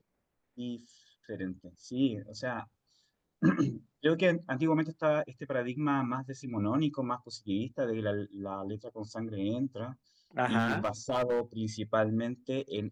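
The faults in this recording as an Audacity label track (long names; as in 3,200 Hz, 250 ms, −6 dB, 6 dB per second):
10.580000	11.400000	clipping −25 dBFS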